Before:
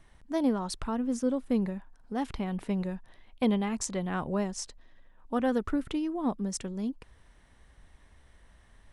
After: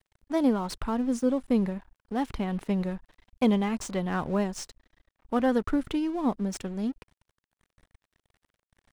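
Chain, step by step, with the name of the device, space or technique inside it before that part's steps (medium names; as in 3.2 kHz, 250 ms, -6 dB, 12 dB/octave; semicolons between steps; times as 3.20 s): early transistor amplifier (crossover distortion -51 dBFS; slew-rate limiter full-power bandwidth 71 Hz); trim +3.5 dB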